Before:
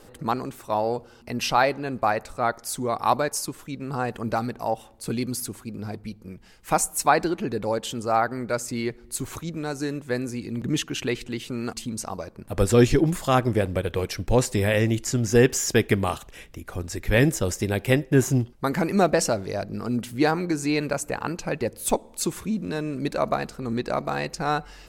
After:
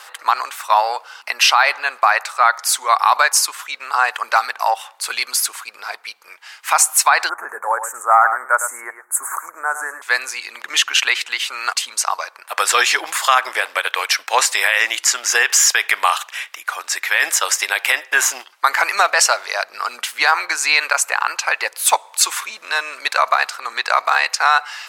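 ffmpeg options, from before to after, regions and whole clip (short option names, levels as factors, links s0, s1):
-filter_complex "[0:a]asettb=1/sr,asplit=3[s0][s1][s2];[s0]atrim=end=7.294[s3];[s1]atrim=start=7.29:end=10.02,asetpts=PTS-STARTPTS,afade=t=in:d=0.004:c=qsin,afade=t=out:st=2.726:d=0.004:c=qsin,aeval=exprs='clip(val(0),-1,0.158)':c=same,asuperstop=centerf=3700:order=8:qfactor=0.6,aecho=1:1:106:0.299,atrim=end_sample=120393[s4];[s2]atrim=start=10.016[s5];[s3][s4]acrossfade=d=0.004:c1=hsin:c2=qsin[s6];[s6][s5]acrossfade=d=0.004:c1=qsin:c2=hsin,highpass=f=1000:w=0.5412,highpass=f=1000:w=1.3066,highshelf=f=5300:g=-8,alimiter=level_in=10.6:limit=0.891:release=50:level=0:latency=1,volume=0.891"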